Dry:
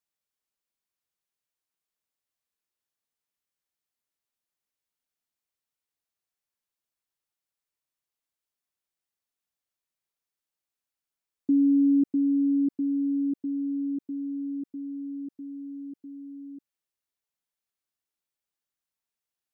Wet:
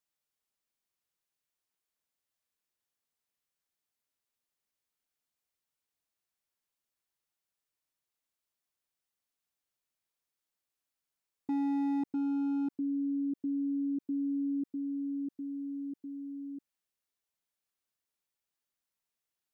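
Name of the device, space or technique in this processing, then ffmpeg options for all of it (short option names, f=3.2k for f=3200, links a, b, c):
clipper into limiter: -af "asoftclip=type=hard:threshold=-22dB,alimiter=level_in=5dB:limit=-24dB:level=0:latency=1,volume=-5dB"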